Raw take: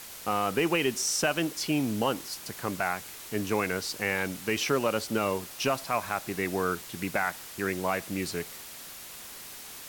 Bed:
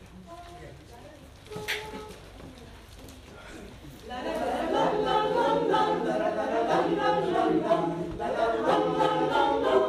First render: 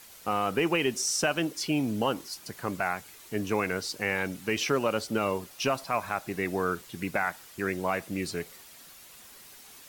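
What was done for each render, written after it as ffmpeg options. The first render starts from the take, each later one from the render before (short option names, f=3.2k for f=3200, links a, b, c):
-af "afftdn=nr=8:nf=-44"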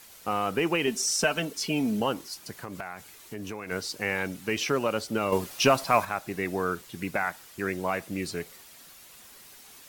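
-filter_complex "[0:a]asettb=1/sr,asplit=3[a][b][c];[a]atrim=end=0.874[d];[b]atrim=start=0.87:end=2,asetpts=PTS-STARTPTS,afade=t=in:d=0.004:c=qsin,afade=t=out:st=1.126:d=0.004:c=qsin,aecho=1:1:4.5:0.65,atrim=end_sample=49833[e];[c]atrim=start=1.996[f];[d][e]acrossfade=d=0.004:c1=hsin:c2=qsin[g];[g][f]acrossfade=d=0.004:c1=qsin:c2=hsin,asplit=3[h][i][j];[h]afade=t=out:st=2.58:d=0.02[k];[i]acompressor=threshold=-33dB:ratio=5:attack=3.2:release=140:knee=1:detection=peak,afade=t=in:st=2.58:d=0.02,afade=t=out:st=3.7:d=0.02[l];[j]afade=t=in:st=3.7:d=0.02[m];[k][l][m]amix=inputs=3:normalize=0,asettb=1/sr,asplit=3[n][o][p];[n]atrim=end=5.324[q];[o]atrim=start=5.32:end=6.05,asetpts=PTS-STARTPTS,afade=t=in:d=0.004:c=qsin,afade=t=out:st=0.726:d=0.004:c=qsin,acontrast=79[r];[p]atrim=start=6.046[s];[q][r]acrossfade=d=0.004:c1=hsin:c2=qsin[t];[t][s]acrossfade=d=0.004:c1=qsin:c2=hsin"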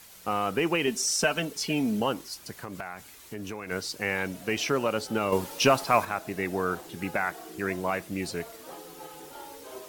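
-filter_complex "[1:a]volume=-20.5dB[a];[0:a][a]amix=inputs=2:normalize=0"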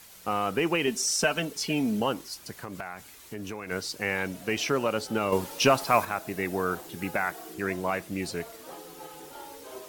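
-filter_complex "[0:a]asettb=1/sr,asplit=3[a][b][c];[a]atrim=end=5.814[d];[b]atrim=start=5.81:end=7.54,asetpts=PTS-STARTPTS,afade=t=in:d=0.004:c=qsin,afade=t=out:st=1.726:d=0.004:c=qsin,highshelf=f=11k:g=6[e];[c]atrim=start=7.536[f];[d][e]acrossfade=d=0.004:c1=hsin:c2=qsin[g];[g][f]acrossfade=d=0.004:c1=qsin:c2=hsin"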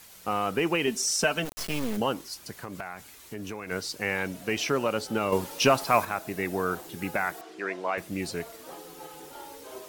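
-filter_complex "[0:a]asplit=3[a][b][c];[a]afade=t=out:st=1.44:d=0.02[d];[b]acrusher=bits=3:dc=4:mix=0:aa=0.000001,afade=t=in:st=1.44:d=0.02,afade=t=out:st=1.96:d=0.02[e];[c]afade=t=in:st=1.96:d=0.02[f];[d][e][f]amix=inputs=3:normalize=0,asettb=1/sr,asplit=3[g][h][i];[g]atrim=end=7.414[j];[h]atrim=start=7.41:end=7.98,asetpts=PTS-STARTPTS,afade=t=in:d=0.004:c=qsin,afade=t=out:st=0.566:d=0.004:c=qsin,highpass=370,lowpass=4.7k[k];[i]atrim=start=7.976[l];[j][k]acrossfade=d=0.004:c1=hsin:c2=qsin[m];[m][l]acrossfade=d=0.004:c1=qsin:c2=hsin"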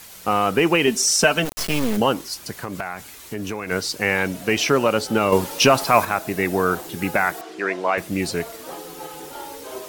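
-af "volume=8.5dB,alimiter=limit=-3dB:level=0:latency=1"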